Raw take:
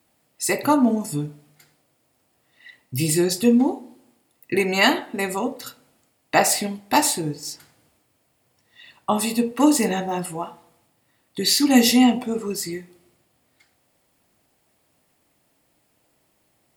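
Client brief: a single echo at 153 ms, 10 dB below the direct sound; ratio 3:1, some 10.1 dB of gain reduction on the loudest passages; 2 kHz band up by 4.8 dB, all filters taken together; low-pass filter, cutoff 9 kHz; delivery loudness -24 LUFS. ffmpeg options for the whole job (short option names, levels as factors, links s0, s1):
-af "lowpass=9000,equalizer=f=2000:t=o:g=5.5,acompressor=threshold=0.0631:ratio=3,aecho=1:1:153:0.316,volume=1.41"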